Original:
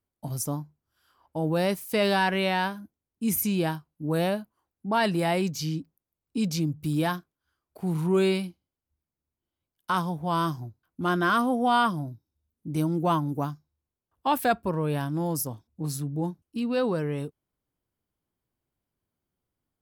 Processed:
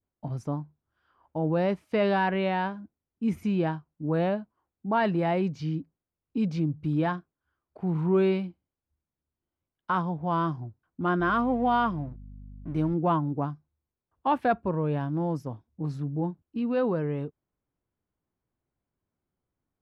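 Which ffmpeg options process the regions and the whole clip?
-filter_complex "[0:a]asettb=1/sr,asplit=3[a][b][c];[a]atrim=end=11.204[d];[b]atrim=start=11.2:end=12.94,asetpts=PTS-STARTPTS,afade=t=in:d=0.004:c=qsin,afade=t=out:st=1.736:d=0.004:c=qsin,highshelf=f=6.2k:g=3.5,aeval=exprs='sgn(val(0))*max(abs(val(0))-0.00422,0)':c=same,aeval=exprs='val(0)+0.00708*(sin(2*PI*50*n/s)+sin(2*PI*2*50*n/s)/2+sin(2*PI*3*50*n/s)/3+sin(2*PI*4*50*n/s)/4+sin(2*PI*5*50*n/s)/5)':c=same[e];[c]atrim=start=12.936[f];[d][e]acrossfade=d=0.004:c1=hsin:c2=qsin[g];[g][f]acrossfade=d=0.004:c1=qsin:c2=hsin,adynamicequalizer=threshold=0.01:dfrequency=1500:dqfactor=1.1:tfrequency=1500:tqfactor=1.1:attack=5:release=100:ratio=0.375:range=2:mode=cutabove:tftype=bell,lowpass=2k"

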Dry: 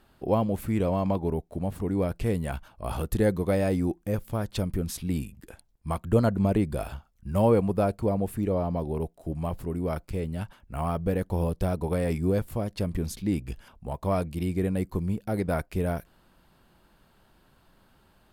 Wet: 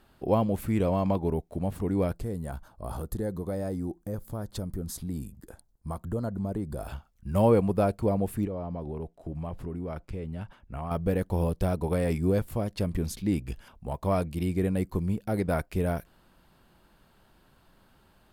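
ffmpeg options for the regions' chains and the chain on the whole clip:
-filter_complex "[0:a]asettb=1/sr,asplit=3[a][b][c];[a]atrim=end=2.154[d];[b]atrim=start=2.15:end=6.88,asetpts=PTS-STARTPTS,afade=t=in:d=0.004:c=qsin,afade=t=out:st=4.726:d=0.004:c=qsin,equalizer=f=2.6k:t=o:w=0.88:g=-14,acompressor=threshold=-33dB:ratio=2:attack=3.2:release=140:knee=1:detection=peak,bandreject=f=5.6k:w=22[e];[c]atrim=start=6.876[f];[d][e]acrossfade=d=0.004:c1=hsin:c2=qsin[g];[g][f]acrossfade=d=0.004:c1=qsin:c2=hsin,asettb=1/sr,asplit=3[h][i][j];[h]atrim=end=8.454[k];[i]atrim=start=8.45:end=10.91,asetpts=PTS-STARTPTS,afade=t=in:d=0.004:c=qsin,afade=t=out:st=2.456:d=0.004:c=qsin,aemphasis=mode=reproduction:type=50kf,acompressor=threshold=-31dB:ratio=4:attack=3.2:release=140:knee=1:detection=peak,bandreject=f=4.3k:w=26[l];[j]atrim=start=10.906[m];[k][l]acrossfade=d=0.004:c1=hsin:c2=qsin[n];[n][m]acrossfade=d=0.004:c1=qsin:c2=hsin"

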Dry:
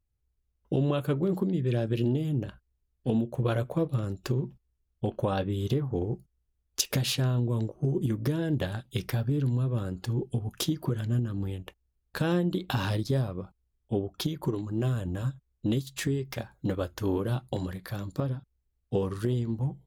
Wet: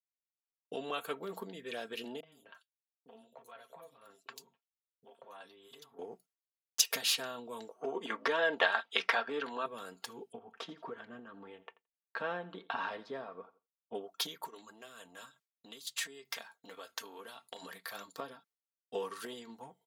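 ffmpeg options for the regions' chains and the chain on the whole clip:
-filter_complex "[0:a]asettb=1/sr,asplit=3[a][b][c];[a]atrim=end=2.204[d];[b]atrim=start=2.2:end=5.99,asetpts=PTS-STARTPTS,afade=t=in:d=0.004:c=qsin,afade=t=out:st=3.786:d=0.004:c=qsin,aecho=1:1:7.4:0.41,atrim=end_sample=167139,acompressor=threshold=-39dB:ratio=8:attack=3.2:release=140:knee=1:detection=peak,acrossover=split=350|3600[e][f][g];[f]adelay=30[h];[g]adelay=120[i];[e][h][i]amix=inputs=3:normalize=0,atrim=end_sample=167139[j];[c]atrim=start=5.986[k];[d][j]acrossfade=d=0.004:c1=hsin:c2=qsin[l];[l][k]acrossfade=d=0.004:c1=qsin:c2=hsin,asettb=1/sr,asplit=3[m][n][o];[m]atrim=end=7.814[p];[n]atrim=start=7.81:end=9.66,asetpts=PTS-STARTPTS,afade=t=in:d=0.004:c=qsin,afade=t=out:st=1.846:d=0.004:c=qsin,highpass=200,lowpass=4.8k,equalizer=f=1.2k:w=0.35:g=14[q];[o]atrim=start=9.656[r];[p][q]acrossfade=d=0.004:c1=hsin:c2=qsin[s];[s][r]acrossfade=d=0.004:c1=qsin:c2=hsin,asettb=1/sr,asplit=3[t][u][v];[t]atrim=end=10.324[w];[u]atrim=start=10.32:end=13.95,asetpts=PTS-STARTPTS,afade=t=in:d=0.004:c=qsin,afade=t=out:st=3.626:d=0.004:c=qsin,lowpass=1.8k,aecho=1:1:85|170|255:0.112|0.0415|0.0154,atrim=end_sample=160083[x];[v]atrim=start=13.946[y];[w][x]acrossfade=d=0.004:c1=hsin:c2=qsin[z];[z][y]acrossfade=d=0.004:c1=qsin:c2=hsin,asettb=1/sr,asplit=3[aa][ab][ac];[aa]atrim=end=14.454[ad];[ab]atrim=start=14.45:end=17.63,asetpts=PTS-STARTPTS,afade=t=in:d=0.004:c=qsin,afade=t=out:st=3.176:d=0.004:c=qsin,highpass=44,acompressor=threshold=-34dB:ratio=12:attack=3.2:release=140:knee=1:detection=peak,equalizer=f=4.8k:w=0.4:g=4.5[ae];[ac]atrim=start=17.626[af];[ad][ae]acrossfade=d=0.004:c1=hsin:c2=qsin[ag];[ag][af]acrossfade=d=0.004:c1=qsin:c2=hsin,agate=range=-33dB:threshold=-49dB:ratio=3:detection=peak,highpass=760,aecho=1:1:4.4:0.62,volume=-1dB"

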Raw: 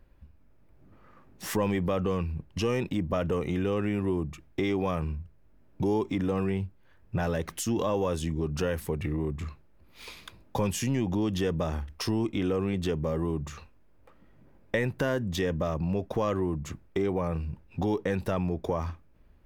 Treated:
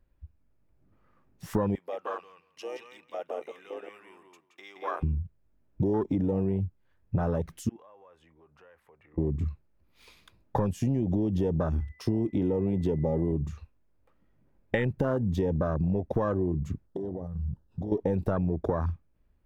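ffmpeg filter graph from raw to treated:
-filter_complex "[0:a]asettb=1/sr,asplit=3[a][b][c];[a]atrim=end=1.754[d];[b]atrim=start=1.75:end=5.03,asetpts=PTS-STARTPTS,afade=t=in:d=0.004:c=qsin,afade=t=out:st=3.276:d=0.004:c=qsin,highpass=950,asplit=2[e][f];[f]adelay=173,lowpass=f=3.6k:p=1,volume=-3dB,asplit=2[g][h];[h]adelay=173,lowpass=f=3.6k:p=1,volume=0.16,asplit=2[i][j];[j]adelay=173,lowpass=f=3.6k:p=1,volume=0.16[k];[e][g][i][k]amix=inputs=4:normalize=0,atrim=end_sample=144648[l];[c]atrim=start=5.026[m];[d][l]acrossfade=d=0.004:c1=hsin:c2=qsin[n];[n][m]acrossfade=d=0.004:c1=qsin:c2=hsin,asettb=1/sr,asplit=3[o][p][q];[o]atrim=end=7.694[r];[p]atrim=start=7.69:end=9.18,asetpts=PTS-STARTPTS,afade=t=in:d=0.004:c=qsin,afade=t=out:st=1.486:d=0.004:c=qsin,acrossover=split=530 2300:gain=0.0708 1 0.0708[s][t][u];[s][t][u]amix=inputs=3:normalize=0,acompressor=threshold=-48dB:ratio=2:attack=3.2:release=140:knee=1:detection=peak[v];[q]atrim=start=9.176[w];[r][v]acrossfade=d=0.004:c1=hsin:c2=qsin[x];[x][w]acrossfade=d=0.004:c1=qsin:c2=hsin,asettb=1/sr,asplit=3[y][z][aa];[y]atrim=end=11.804[ab];[z]atrim=start=11.8:end=13.32,asetpts=PTS-STARTPTS,afade=t=in:d=0.004:c=qsin,afade=t=out:st=1.516:d=0.004:c=qsin,highpass=79,aeval=exprs='val(0)+0.00447*sin(2*PI*2000*n/s)':c=same[ac];[aa]atrim=start=13.316[ad];[ab][ac]acrossfade=d=0.004:c1=hsin:c2=qsin[ae];[ae][ad]acrossfade=d=0.004:c1=qsin:c2=hsin,asettb=1/sr,asplit=3[af][ag][ah];[af]atrim=end=16.864[ai];[ag]atrim=start=16.86:end=17.92,asetpts=PTS-STARTPTS,afade=t=in:d=0.004:c=qsin,afade=t=out:st=1.056:d=0.004:c=qsin,asuperstop=centerf=2300:order=4:qfactor=1.7,acompressor=threshold=-34dB:ratio=20:attack=3.2:release=140:knee=1:detection=peak[aj];[ah]atrim=start=17.916[ak];[ai][aj]acrossfade=d=0.004:c1=hsin:c2=qsin[al];[al][ak]acrossfade=d=0.004:c1=qsin:c2=hsin,afwtdn=0.0316,lowshelf=f=160:g=3,acompressor=threshold=-28dB:ratio=6,volume=5dB"

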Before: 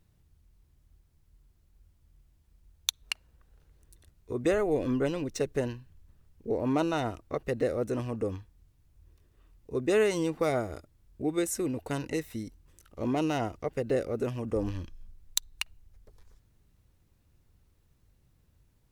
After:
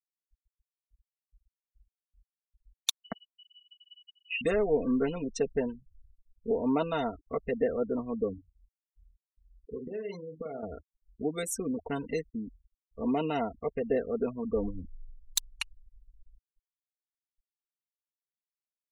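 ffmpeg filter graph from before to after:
-filter_complex "[0:a]asettb=1/sr,asplit=3[a][b][c];[a]atrim=end=3.024[d];[b]atrim=start=3.02:end=4.41,asetpts=PTS-STARTPTS,afade=t=in:d=0.004:c=qsin,afade=t=out:st=1.386:d=0.004:c=qsin,aeval=exprs='val(0)+0.00141*(sin(2*PI*60*n/s)+sin(2*PI*2*60*n/s)/2+sin(2*PI*3*60*n/s)/3+sin(2*PI*4*60*n/s)/4+sin(2*PI*5*60*n/s)/5)':c=same,lowpass=f=2.6k:t=q:w=0.5098,lowpass=f=2.6k:t=q:w=0.6013,lowpass=f=2.6k:t=q:w=0.9,lowpass=f=2.6k:t=q:w=2.563,afreqshift=-3000[e];[c]atrim=start=4.406[f];[d][e]acrossfade=d=0.004:c1=hsin:c2=qsin[g];[g][f]acrossfade=d=0.004:c1=qsin:c2=hsin,asettb=1/sr,asplit=3[h][i][j];[h]atrim=end=8.334[k];[i]atrim=start=8.33:end=10.63,asetpts=PTS-STARTPTS,afade=t=in:d=0.004:c=qsin,afade=t=out:st=2.296:d=0.004:c=qsin,tremolo=f=22:d=0.261,acompressor=threshold=-34dB:ratio=16:attack=3.2:release=140:knee=1:detection=peak,asplit=2[l][m];[m]adelay=45,volume=-7.5dB[n];[l][n]amix=inputs=2:normalize=0,atrim=end_sample=101430[o];[j]atrim=start=10.626[p];[k][o]acrossfade=d=0.004:c1=hsin:c2=qsin[q];[q][p]acrossfade=d=0.004:c1=qsin:c2=hsin,afftfilt=real='re*gte(hypot(re,im),0.0158)':imag='im*gte(hypot(re,im),0.0158)':win_size=1024:overlap=0.75,aecho=1:1:4.4:0.84,volume=-2.5dB"

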